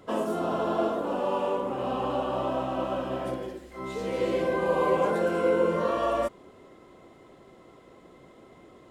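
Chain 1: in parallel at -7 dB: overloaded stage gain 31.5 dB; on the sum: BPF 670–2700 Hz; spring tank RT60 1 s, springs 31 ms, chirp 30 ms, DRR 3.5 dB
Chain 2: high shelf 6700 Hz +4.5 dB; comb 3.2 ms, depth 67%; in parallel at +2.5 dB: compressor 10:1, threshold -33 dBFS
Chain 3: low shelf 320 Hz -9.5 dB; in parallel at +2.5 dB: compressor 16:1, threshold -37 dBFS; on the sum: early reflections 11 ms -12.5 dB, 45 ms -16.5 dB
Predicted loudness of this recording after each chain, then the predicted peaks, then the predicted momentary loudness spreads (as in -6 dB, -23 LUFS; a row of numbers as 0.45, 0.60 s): -29.5, -24.0, -28.0 LUFS; -14.5, -8.5, -13.0 dBFS; 11, 22, 11 LU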